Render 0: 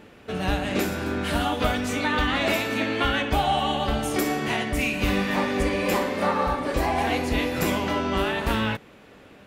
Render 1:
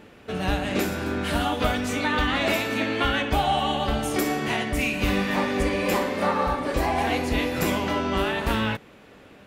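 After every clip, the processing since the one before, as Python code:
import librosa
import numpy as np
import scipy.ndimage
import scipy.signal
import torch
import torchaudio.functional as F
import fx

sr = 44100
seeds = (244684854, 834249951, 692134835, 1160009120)

y = x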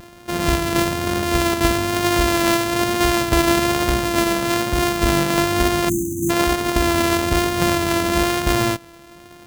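y = np.r_[np.sort(x[:len(x) // 128 * 128].reshape(-1, 128), axis=1).ravel(), x[len(x) // 128 * 128:]]
y = fx.spec_erase(y, sr, start_s=5.89, length_s=0.41, low_hz=360.0, high_hz=5900.0)
y = fx.vibrato(y, sr, rate_hz=1.1, depth_cents=26.0)
y = F.gain(torch.from_numpy(y), 6.0).numpy()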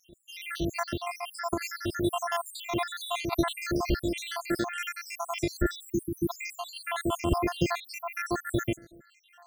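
y = fx.spec_dropout(x, sr, seeds[0], share_pct=82)
y = fx.high_shelf(y, sr, hz=4800.0, db=-6.0)
y = F.gain(torch.from_numpy(y), -4.0).numpy()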